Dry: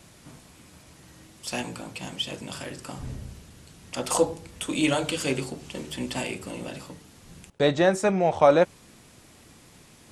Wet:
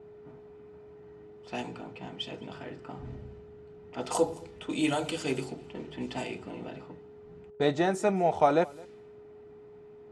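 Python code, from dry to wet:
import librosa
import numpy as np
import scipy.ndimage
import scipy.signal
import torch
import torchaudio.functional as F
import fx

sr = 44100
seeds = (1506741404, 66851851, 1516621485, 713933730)

p1 = x + 10.0 ** (-45.0 / 20.0) * np.sin(2.0 * np.pi * 420.0 * np.arange(len(x)) / sr)
p2 = fx.peak_eq(p1, sr, hz=570.0, db=5.0, octaves=1.4)
p3 = fx.notch_comb(p2, sr, f0_hz=550.0)
p4 = fx.env_lowpass(p3, sr, base_hz=1200.0, full_db=-21.0)
p5 = p4 + fx.echo_single(p4, sr, ms=213, db=-23.5, dry=0)
y = p5 * librosa.db_to_amplitude(-5.5)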